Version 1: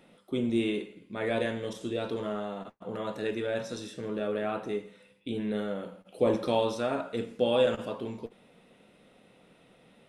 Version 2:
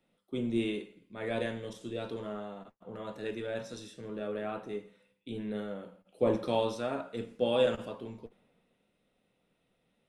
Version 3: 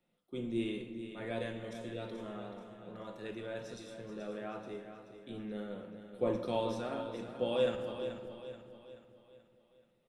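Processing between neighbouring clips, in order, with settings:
low shelf 67 Hz +7.5 dB; three-band expander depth 40%; gain -5 dB
feedback echo 0.431 s, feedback 46%, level -10 dB; shoebox room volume 2800 m³, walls mixed, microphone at 0.88 m; gain -5.5 dB

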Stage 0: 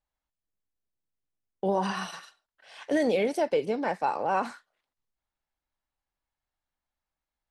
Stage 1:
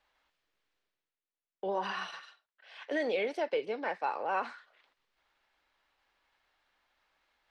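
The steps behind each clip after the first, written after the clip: bell 740 Hz -6 dB 1.4 oct; reverse; upward compressor, threshold -50 dBFS; reverse; three-band isolator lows -19 dB, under 380 Hz, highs -23 dB, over 4300 Hz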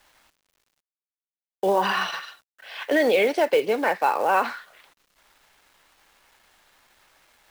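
in parallel at -3 dB: limiter -29.5 dBFS, peak gain reduction 8.5 dB; on the sum: companded quantiser 6-bit; gain +9 dB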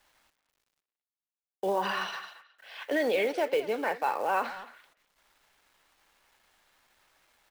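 speakerphone echo 0.22 s, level -13 dB; gain -7.5 dB

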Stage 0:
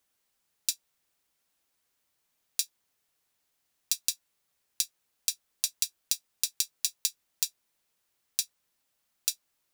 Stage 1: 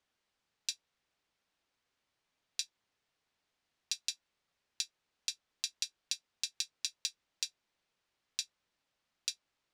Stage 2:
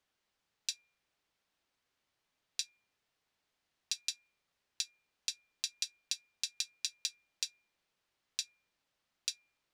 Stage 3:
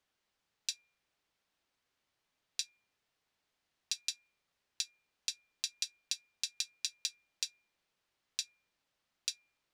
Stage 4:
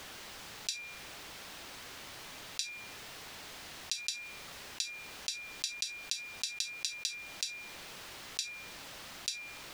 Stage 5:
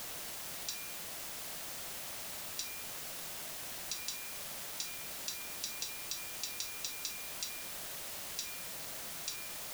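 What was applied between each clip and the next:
LPF 4600 Hz 12 dB/oct; gain -1 dB
de-hum 240.1 Hz, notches 10
nothing audible
fast leveller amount 70%
fifteen-band EQ 160 Hz +9 dB, 630 Hz +11 dB, 6300 Hz +5 dB; requantised 6-bit, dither triangular; gain -8 dB

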